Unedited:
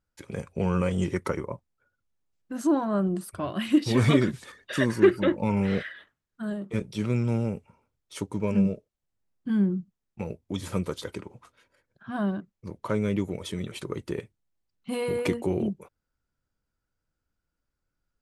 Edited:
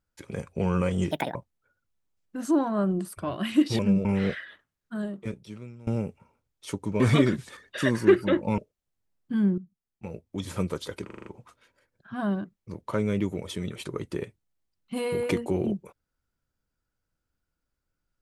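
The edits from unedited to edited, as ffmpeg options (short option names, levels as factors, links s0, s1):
-filter_complex "[0:a]asplit=14[s0][s1][s2][s3][s4][s5][s6][s7][s8][s9][s10][s11][s12][s13];[s0]atrim=end=1.114[s14];[s1]atrim=start=1.11:end=1.51,asetpts=PTS-STARTPTS,asetrate=73647,aresample=44100[s15];[s2]atrim=start=1.506:end=3.952[s16];[s3]atrim=start=8.478:end=8.742[s17];[s4]atrim=start=5.528:end=7.35,asetpts=PTS-STARTPTS,afade=t=out:st=1.012:d=0.81:c=qua:silence=0.0841395[s18];[s5]atrim=start=7.35:end=8.482,asetpts=PTS-STARTPTS,afade=t=in:d=0.004:c=hsin:silence=0.0841395[s19];[s6]atrim=start=3.948:end=5.532[s20];[s7]atrim=start=8.738:end=9.74,asetpts=PTS-STARTPTS,afade=t=out:st=0.998:d=0.004:c=hsin:silence=0.199526[s21];[s8]atrim=start=9.74:end=11.262,asetpts=PTS-STARTPTS,afade=t=in:d=0.97:silence=0.199526[s22];[s9]atrim=start=11.218:end=11.262[s23];[s10]atrim=start=11.218:end=11.262[s24];[s11]atrim=start=11.218:end=11.262[s25];[s12]atrim=start=11.218:end=11.262[s26];[s13]atrim=start=11.218[s27];[s14][s15]acrossfade=d=0.004:c1=hsin:c2=hsin[s28];[s28][s16]acrossfade=d=0.004:c1=hsin:c2=hsin[s29];[s29][s17]acrossfade=d=0.004:c1=hsin:c2=hsin[s30];[s18][s19]concat=n=2:v=0:a=1[s31];[s30][s31]acrossfade=d=0.004:c1=hsin:c2=hsin[s32];[s32][s20]acrossfade=d=0.004:c1=hsin:c2=hsin[s33];[s21][s22]concat=n=2:v=0:a=1[s34];[s33][s34]acrossfade=d=0.004:c1=hsin:c2=hsin[s35];[s35][s23]acrossfade=d=0.004:c1=hsin:c2=hsin[s36];[s36][s24]acrossfade=d=0.004:c1=hsin:c2=hsin[s37];[s37][s25]acrossfade=d=0.004:c1=hsin:c2=hsin[s38];[s38][s26]acrossfade=d=0.004:c1=hsin:c2=hsin[s39];[s39][s27]acrossfade=d=0.004:c1=hsin:c2=hsin"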